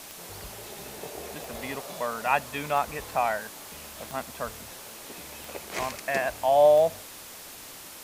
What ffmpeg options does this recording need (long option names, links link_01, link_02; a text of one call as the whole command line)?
ffmpeg -i in.wav -af "adeclick=threshold=4,afwtdn=0.0071" out.wav